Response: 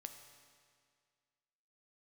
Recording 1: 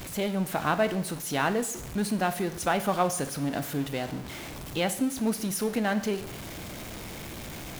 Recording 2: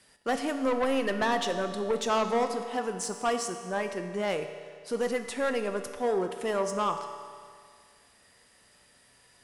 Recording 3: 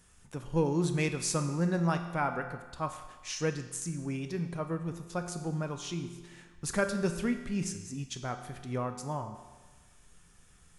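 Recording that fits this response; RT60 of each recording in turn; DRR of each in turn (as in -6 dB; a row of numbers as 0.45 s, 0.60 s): 2; 0.70 s, 2.0 s, 1.3 s; 10.5 dB, 6.0 dB, 6.0 dB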